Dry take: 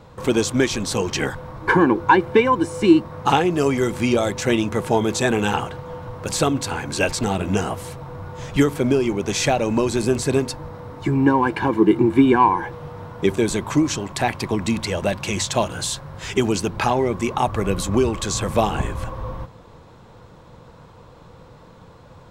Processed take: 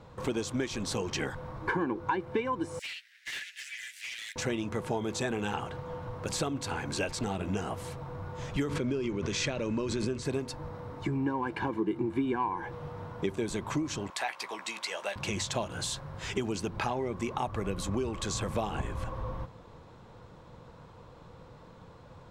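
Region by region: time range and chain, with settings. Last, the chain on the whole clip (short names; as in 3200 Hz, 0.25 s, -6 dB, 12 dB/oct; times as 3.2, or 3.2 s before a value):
2.79–4.36 minimum comb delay 9.9 ms + steep high-pass 1700 Hz 72 dB/oct + hard clip -28 dBFS
8.69–10.25 LPF 6800 Hz + bell 760 Hz -14.5 dB 0.29 oct + backwards sustainer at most 37 dB/s
14.1–15.16 HPF 840 Hz + doubler 15 ms -9 dB
whole clip: high shelf 10000 Hz -8 dB; compressor 3:1, threshold -24 dBFS; gain -6 dB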